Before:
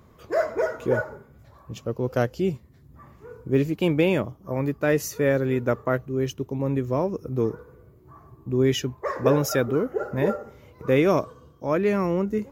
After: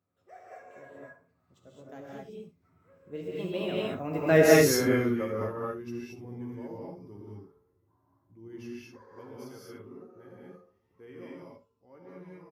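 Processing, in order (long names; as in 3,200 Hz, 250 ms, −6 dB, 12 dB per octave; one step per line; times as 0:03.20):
source passing by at 0:04.42, 39 m/s, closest 5.5 metres
high-pass filter 88 Hz
on a send: ambience of single reflections 11 ms −6.5 dB, 66 ms −13 dB
on the sum: reverb whose tail is shaped and stops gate 250 ms rising, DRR −5.5 dB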